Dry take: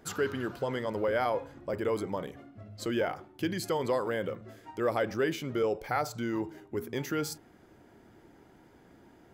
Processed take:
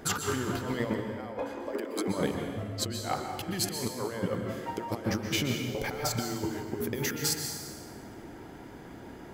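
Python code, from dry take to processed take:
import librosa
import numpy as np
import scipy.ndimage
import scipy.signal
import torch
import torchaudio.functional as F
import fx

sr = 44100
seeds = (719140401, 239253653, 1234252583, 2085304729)

y = fx.steep_highpass(x, sr, hz=230.0, slope=96, at=(1.41, 2.08))
y = fx.over_compress(y, sr, threshold_db=-37.0, ratio=-0.5)
y = fx.rev_plate(y, sr, seeds[0], rt60_s=1.5, hf_ratio=0.9, predelay_ms=110, drr_db=4.5)
y = F.gain(torch.from_numpy(y), 4.5).numpy()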